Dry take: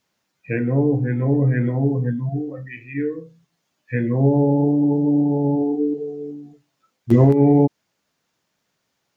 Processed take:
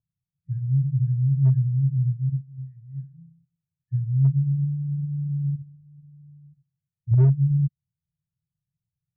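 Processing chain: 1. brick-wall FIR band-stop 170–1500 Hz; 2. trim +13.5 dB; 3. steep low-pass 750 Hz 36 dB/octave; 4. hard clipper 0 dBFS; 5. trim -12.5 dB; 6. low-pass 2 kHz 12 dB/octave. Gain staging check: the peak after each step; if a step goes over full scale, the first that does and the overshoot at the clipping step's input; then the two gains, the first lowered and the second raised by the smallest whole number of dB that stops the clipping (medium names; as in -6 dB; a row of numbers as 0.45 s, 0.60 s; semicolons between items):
-9.0 dBFS, +4.5 dBFS, +4.5 dBFS, 0.0 dBFS, -12.5 dBFS, -12.5 dBFS; step 2, 4.5 dB; step 2 +8.5 dB, step 5 -7.5 dB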